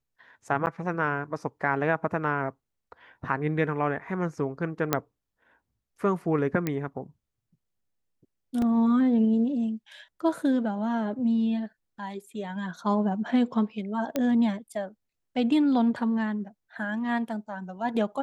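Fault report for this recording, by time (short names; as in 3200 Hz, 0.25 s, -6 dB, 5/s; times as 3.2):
0.66–0.67 gap 9.3 ms
4.93 pop -7 dBFS
6.67 pop -14 dBFS
8.62 gap 2.3 ms
14.16 pop -13 dBFS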